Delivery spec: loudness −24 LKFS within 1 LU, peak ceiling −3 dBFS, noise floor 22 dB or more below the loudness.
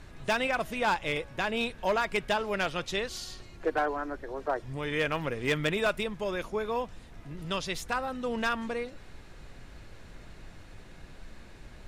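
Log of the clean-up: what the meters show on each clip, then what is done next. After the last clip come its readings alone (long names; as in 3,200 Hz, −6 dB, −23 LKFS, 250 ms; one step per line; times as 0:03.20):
share of clipped samples 0.4%; peaks flattened at −20.5 dBFS; background noise floor −50 dBFS; target noise floor −53 dBFS; integrated loudness −31.0 LKFS; sample peak −20.5 dBFS; target loudness −24.0 LKFS
→ clipped peaks rebuilt −20.5 dBFS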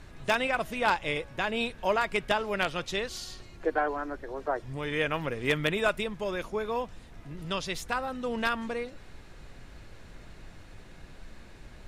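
share of clipped samples 0.0%; background noise floor −50 dBFS; target noise floor −53 dBFS
→ noise reduction from a noise print 6 dB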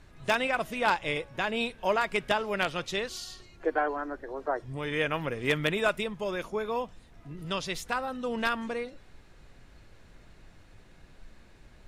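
background noise floor −55 dBFS; integrated loudness −30.5 LKFS; sample peak −11.5 dBFS; target loudness −24.0 LKFS
→ level +6.5 dB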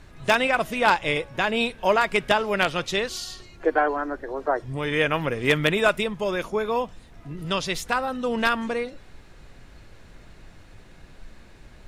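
integrated loudness −24.0 LKFS; sample peak −5.0 dBFS; background noise floor −49 dBFS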